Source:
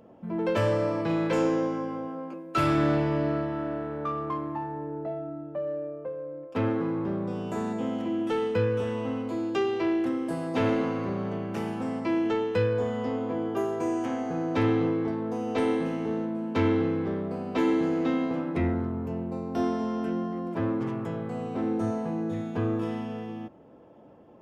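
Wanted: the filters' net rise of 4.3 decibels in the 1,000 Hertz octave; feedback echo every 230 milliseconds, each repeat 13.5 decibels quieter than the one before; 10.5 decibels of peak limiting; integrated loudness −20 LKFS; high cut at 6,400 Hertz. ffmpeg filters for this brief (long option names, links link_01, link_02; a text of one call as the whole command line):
ffmpeg -i in.wav -af "lowpass=6400,equalizer=frequency=1000:width_type=o:gain=5.5,alimiter=limit=-22.5dB:level=0:latency=1,aecho=1:1:230|460:0.211|0.0444,volume=10.5dB" out.wav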